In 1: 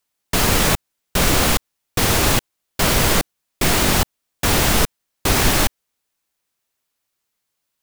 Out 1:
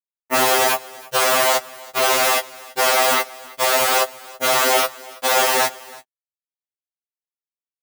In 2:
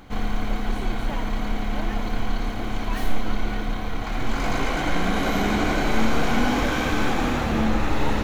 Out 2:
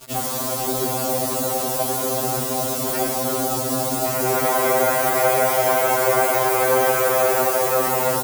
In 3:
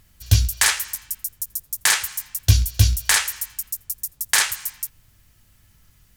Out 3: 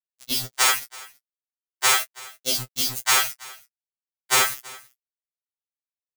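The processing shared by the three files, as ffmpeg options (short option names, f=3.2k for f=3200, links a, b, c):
-filter_complex "[0:a]acrossover=split=460[a][b];[a]dynaudnorm=f=230:g=7:m=10dB[c];[c][b]amix=inputs=2:normalize=0,afftfilt=real='re*lt(hypot(re,im),0.398)':imag='im*lt(hypot(re,im),0.398)':win_size=1024:overlap=0.75,asplit=2[d][e];[e]acompressor=threshold=-33dB:ratio=20,volume=1dB[f];[d][f]amix=inputs=2:normalize=0,afwtdn=0.0355,bandpass=f=510:t=q:w=0.78:csg=0,acrusher=bits=6:mix=0:aa=0.000001,crystalizer=i=4:c=0,asplit=2[g][h];[h]adelay=17,volume=-13.5dB[i];[g][i]amix=inputs=2:normalize=0,aecho=1:1:329:0.0841,afftfilt=real='re*2.45*eq(mod(b,6),0)':imag='im*2.45*eq(mod(b,6),0)':win_size=2048:overlap=0.75,volume=8dB"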